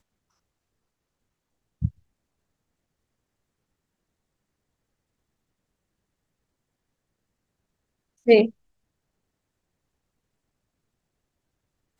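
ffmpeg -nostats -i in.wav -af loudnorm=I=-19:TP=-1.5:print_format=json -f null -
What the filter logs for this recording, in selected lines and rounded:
"input_i" : "-22.0",
"input_tp" : "-4.0",
"input_lra" : "14.0",
"input_thresh" : "-32.8",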